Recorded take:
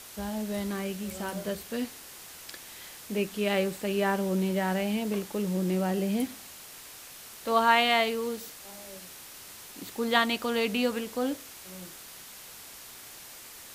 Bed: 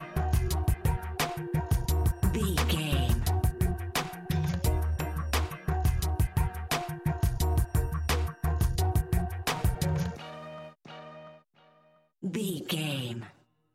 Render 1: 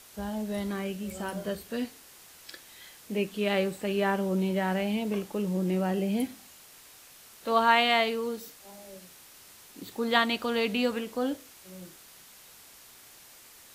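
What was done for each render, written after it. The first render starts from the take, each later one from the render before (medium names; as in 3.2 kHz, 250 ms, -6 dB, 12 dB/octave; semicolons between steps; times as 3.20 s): noise print and reduce 6 dB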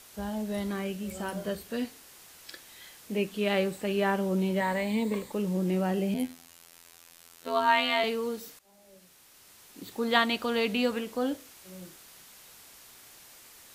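4.60–5.32 s: rippled EQ curve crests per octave 1, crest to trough 11 dB; 6.14–8.04 s: robot voice 84.5 Hz; 8.59–10.00 s: fade in, from -16.5 dB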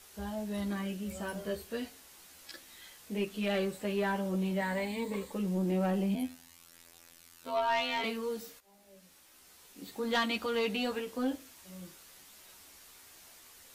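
chorus voices 4, 0.15 Hz, delay 13 ms, depth 2.4 ms; saturation -22.5 dBFS, distortion -18 dB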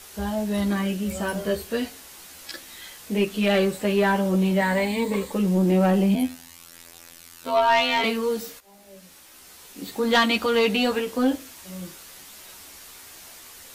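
trim +11 dB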